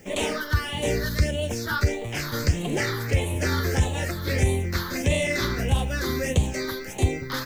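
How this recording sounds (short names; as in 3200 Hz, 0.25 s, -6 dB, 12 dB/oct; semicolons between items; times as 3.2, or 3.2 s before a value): a quantiser's noise floor 10-bit, dither triangular; phasing stages 6, 1.6 Hz, lowest notch 700–1400 Hz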